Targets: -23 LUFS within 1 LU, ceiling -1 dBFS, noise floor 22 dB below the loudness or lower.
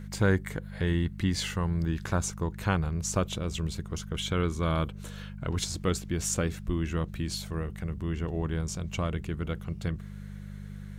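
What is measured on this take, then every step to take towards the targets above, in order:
hum 50 Hz; harmonics up to 200 Hz; hum level -39 dBFS; loudness -31.0 LUFS; peak -12.0 dBFS; loudness target -23.0 LUFS
-> de-hum 50 Hz, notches 4; gain +8 dB

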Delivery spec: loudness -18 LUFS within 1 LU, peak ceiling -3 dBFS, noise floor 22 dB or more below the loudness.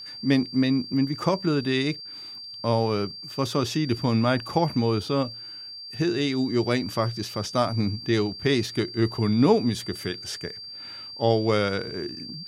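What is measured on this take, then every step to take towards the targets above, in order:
ticks 33/s; steady tone 4700 Hz; tone level -37 dBFS; loudness -25.0 LUFS; peak -7.5 dBFS; loudness target -18.0 LUFS
-> de-click; notch 4700 Hz, Q 30; gain +7 dB; limiter -3 dBFS

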